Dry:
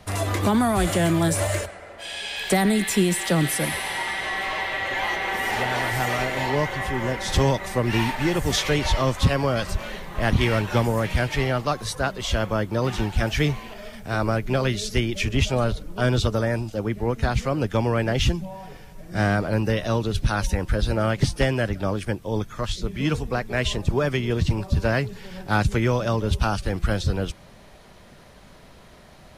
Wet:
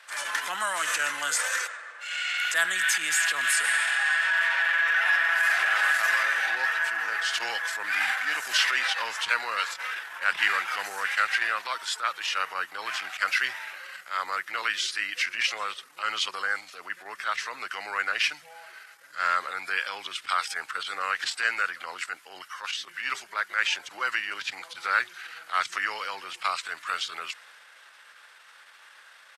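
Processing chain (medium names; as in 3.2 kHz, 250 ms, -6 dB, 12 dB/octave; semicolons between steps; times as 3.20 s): transient shaper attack -8 dB, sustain +2 dB; pitch shift -2.5 st; resonant high-pass 1.5 kHz, resonance Q 2.1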